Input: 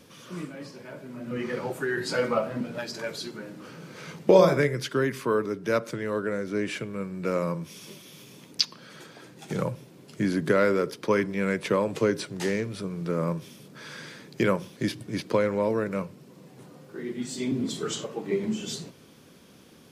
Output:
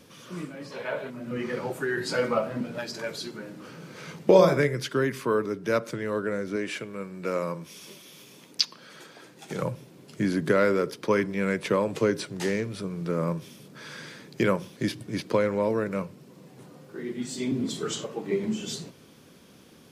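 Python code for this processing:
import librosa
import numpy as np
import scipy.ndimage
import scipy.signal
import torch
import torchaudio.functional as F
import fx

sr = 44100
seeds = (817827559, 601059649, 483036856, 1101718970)

y = fx.spec_box(x, sr, start_s=0.71, length_s=0.39, low_hz=390.0, high_hz=4300.0, gain_db=12)
y = fx.low_shelf(y, sr, hz=170.0, db=-11.0, at=(6.56, 9.63))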